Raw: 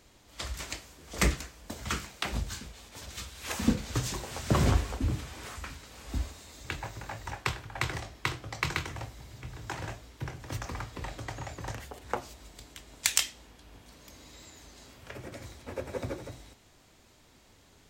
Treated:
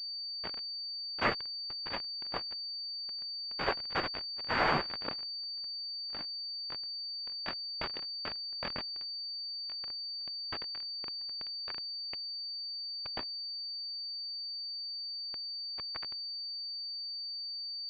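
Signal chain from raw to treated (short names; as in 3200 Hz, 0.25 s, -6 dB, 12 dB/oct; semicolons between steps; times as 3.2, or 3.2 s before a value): spectral gate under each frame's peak -20 dB weak; fuzz box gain 36 dB, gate -40 dBFS; pulse-width modulation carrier 4600 Hz; gain -5 dB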